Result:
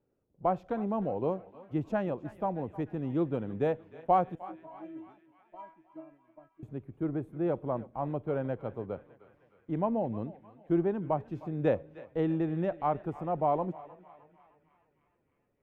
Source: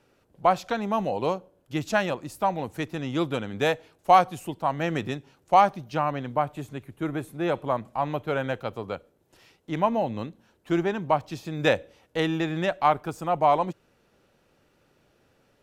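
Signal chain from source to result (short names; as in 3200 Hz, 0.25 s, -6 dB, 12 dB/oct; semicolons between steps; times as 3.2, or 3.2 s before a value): 4.35–6.63 metallic resonator 320 Hz, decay 0.4 s, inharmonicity 0.002; gate -50 dBFS, range -9 dB; EQ curve 420 Hz 0 dB, 3100 Hz -19 dB, 4400 Hz -27 dB; narrowing echo 0.306 s, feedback 71%, band-pass 2200 Hz, level -15 dB; warbling echo 0.321 s, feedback 42%, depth 113 cents, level -23 dB; gain -2.5 dB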